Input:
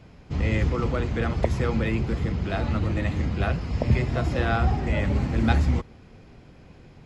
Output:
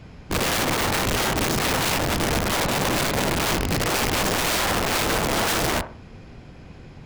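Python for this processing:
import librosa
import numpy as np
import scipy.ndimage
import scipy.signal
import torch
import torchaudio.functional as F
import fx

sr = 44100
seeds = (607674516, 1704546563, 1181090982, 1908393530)

y = fx.peak_eq(x, sr, hz=500.0, db=-2.5, octaves=1.5)
y = (np.mod(10.0 ** (24.5 / 20.0) * y + 1.0, 2.0) - 1.0) / 10.0 ** (24.5 / 20.0)
y = fx.echo_wet_bandpass(y, sr, ms=62, feedback_pct=30, hz=740.0, wet_db=-8.5)
y = F.gain(torch.from_numpy(y), 6.5).numpy()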